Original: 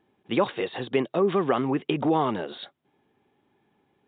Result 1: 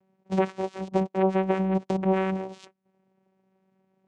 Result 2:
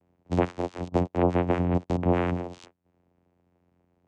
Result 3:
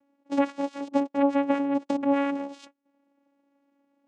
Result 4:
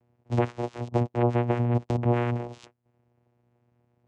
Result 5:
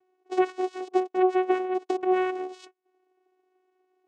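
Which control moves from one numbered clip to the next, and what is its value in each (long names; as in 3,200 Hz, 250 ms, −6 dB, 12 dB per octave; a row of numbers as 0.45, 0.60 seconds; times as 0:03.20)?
channel vocoder, frequency: 190, 88, 280, 120, 370 Hertz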